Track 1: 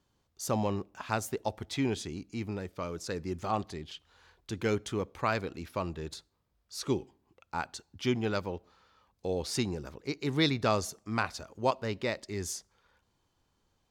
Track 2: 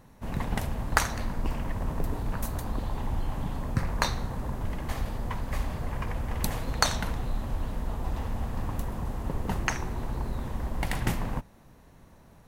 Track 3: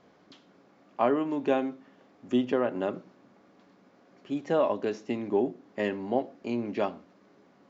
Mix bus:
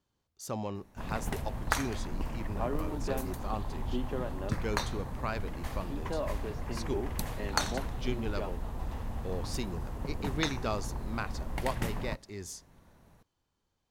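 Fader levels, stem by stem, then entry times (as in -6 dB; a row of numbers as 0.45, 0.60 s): -6.0, -5.5, -10.5 dB; 0.00, 0.75, 1.60 s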